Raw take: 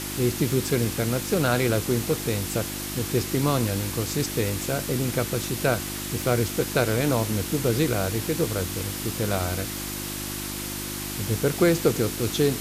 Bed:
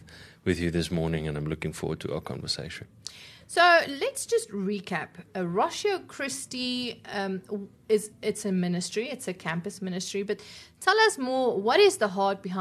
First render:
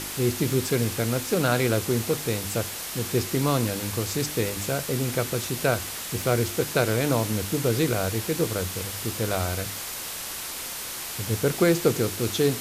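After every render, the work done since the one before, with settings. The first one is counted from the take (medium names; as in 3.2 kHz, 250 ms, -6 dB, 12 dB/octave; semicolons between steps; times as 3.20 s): de-hum 50 Hz, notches 7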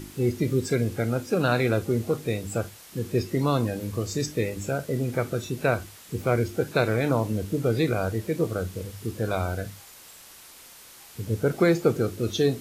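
noise print and reduce 14 dB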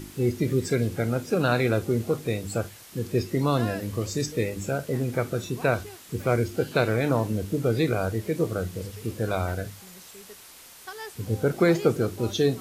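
add bed -18.5 dB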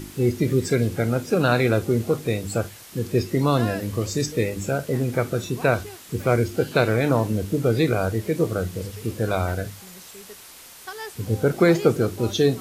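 trim +3.5 dB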